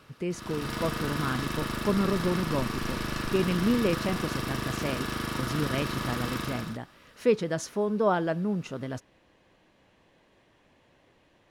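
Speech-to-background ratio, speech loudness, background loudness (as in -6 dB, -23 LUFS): 1.5 dB, -31.0 LUFS, -32.5 LUFS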